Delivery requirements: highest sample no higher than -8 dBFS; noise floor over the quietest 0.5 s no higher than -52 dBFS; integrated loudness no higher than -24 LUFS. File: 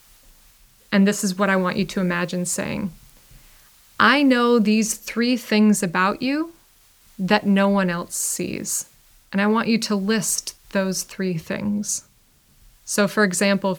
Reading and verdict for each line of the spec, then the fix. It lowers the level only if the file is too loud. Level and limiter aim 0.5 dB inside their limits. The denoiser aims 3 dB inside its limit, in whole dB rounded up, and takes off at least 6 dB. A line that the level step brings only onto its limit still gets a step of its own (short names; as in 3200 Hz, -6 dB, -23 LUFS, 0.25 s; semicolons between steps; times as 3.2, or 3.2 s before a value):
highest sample -2.0 dBFS: fail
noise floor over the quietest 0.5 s -57 dBFS: OK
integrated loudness -21.0 LUFS: fail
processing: gain -3.5 dB; limiter -8.5 dBFS